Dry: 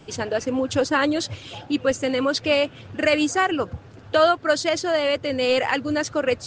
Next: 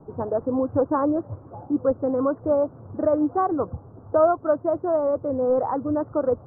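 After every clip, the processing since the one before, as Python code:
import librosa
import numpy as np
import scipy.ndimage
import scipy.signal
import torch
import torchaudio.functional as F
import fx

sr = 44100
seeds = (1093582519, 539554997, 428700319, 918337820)

y = scipy.signal.sosfilt(scipy.signal.butter(8, 1200.0, 'lowpass', fs=sr, output='sos'), x)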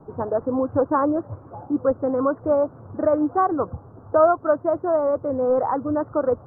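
y = fx.peak_eq(x, sr, hz=1700.0, db=6.0, octaves=1.9)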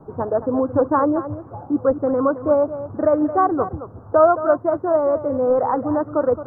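y = x + 10.0 ** (-12.5 / 20.0) * np.pad(x, (int(219 * sr / 1000.0), 0))[:len(x)]
y = y * librosa.db_to_amplitude(2.5)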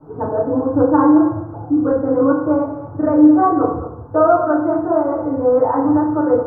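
y = fx.rev_fdn(x, sr, rt60_s=0.68, lf_ratio=1.25, hf_ratio=0.65, size_ms=20.0, drr_db=-9.0)
y = y * librosa.db_to_amplitude(-8.0)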